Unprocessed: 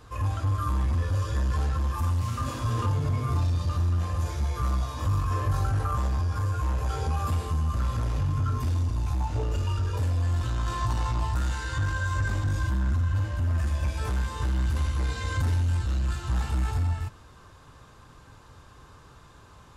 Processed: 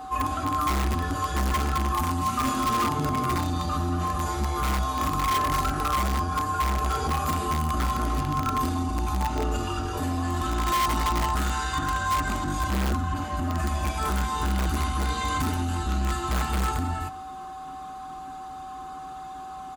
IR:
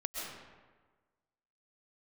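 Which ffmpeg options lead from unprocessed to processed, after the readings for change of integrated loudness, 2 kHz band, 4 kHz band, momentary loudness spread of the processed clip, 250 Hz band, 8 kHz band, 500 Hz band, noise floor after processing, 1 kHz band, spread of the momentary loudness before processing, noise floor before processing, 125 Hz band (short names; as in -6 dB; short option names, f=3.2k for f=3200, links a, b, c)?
+1.5 dB, +5.0 dB, +8.0 dB, 14 LU, +7.5 dB, +8.5 dB, +5.0 dB, -38 dBFS, +10.0 dB, 3 LU, -52 dBFS, -4.0 dB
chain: -filter_complex "[0:a]highpass=f=71:p=1,highshelf=f=8.5k:g=5,bandreject=f=5.4k:w=9.9,aecho=1:1:4.7:0.97,asplit=2[a][b];[b]adelay=151,lowpass=f=1.5k:p=1,volume=-21dB,asplit=2[c][d];[d]adelay=151,lowpass=f=1.5k:p=1,volume=0.16[e];[a][c][e]amix=inputs=3:normalize=0,aeval=exprs='val(0)+0.0126*sin(2*PI*760*n/s)':c=same,superequalizer=6b=3.98:7b=0.631:10b=2,asplit=2[f][g];[g]aeval=exprs='(mod(8.91*val(0)+1,2)-1)/8.91':c=same,volume=-3.5dB[h];[f][h]amix=inputs=2:normalize=0,volume=-2.5dB"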